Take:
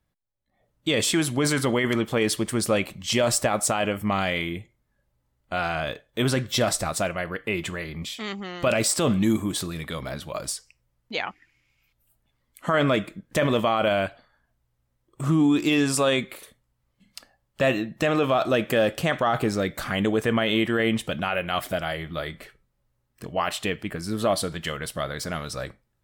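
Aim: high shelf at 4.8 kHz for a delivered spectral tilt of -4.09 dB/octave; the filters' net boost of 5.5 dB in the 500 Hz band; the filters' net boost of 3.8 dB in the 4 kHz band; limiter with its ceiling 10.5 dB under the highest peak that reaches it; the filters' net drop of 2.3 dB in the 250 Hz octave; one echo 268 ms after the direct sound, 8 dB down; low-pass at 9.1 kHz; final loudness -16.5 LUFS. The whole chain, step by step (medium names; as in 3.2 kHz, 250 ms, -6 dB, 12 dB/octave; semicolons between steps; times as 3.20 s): low-pass 9.1 kHz; peaking EQ 250 Hz -6 dB; peaking EQ 500 Hz +8 dB; peaking EQ 4 kHz +7.5 dB; treble shelf 4.8 kHz -5.5 dB; peak limiter -16.5 dBFS; delay 268 ms -8 dB; trim +10.5 dB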